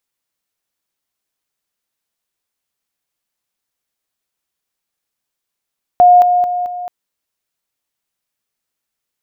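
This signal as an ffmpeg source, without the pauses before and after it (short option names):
-f lavfi -i "aevalsrc='pow(10,(-3.5-6*floor(t/0.22))/20)*sin(2*PI*715*t)':d=0.88:s=44100"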